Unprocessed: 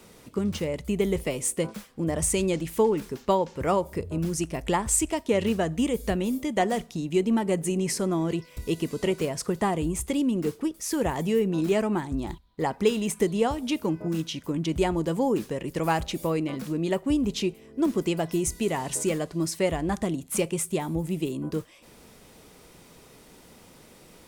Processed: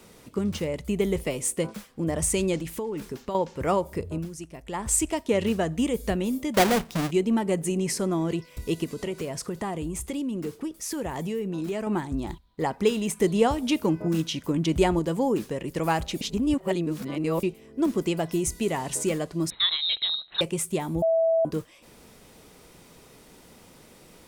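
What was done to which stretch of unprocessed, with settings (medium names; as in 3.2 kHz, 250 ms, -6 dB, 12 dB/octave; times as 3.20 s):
2.58–3.35 s: compression 12:1, threshold -27 dBFS
4.12–4.89 s: dip -10.5 dB, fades 0.17 s
6.54–7.11 s: square wave that keeps the level
8.84–11.87 s: compression 2.5:1, threshold -29 dBFS
13.24–14.99 s: gain +3 dB
16.21–17.43 s: reverse
19.50–20.41 s: frequency inversion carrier 4 kHz
21.02–21.45 s: bleep 655 Hz -18.5 dBFS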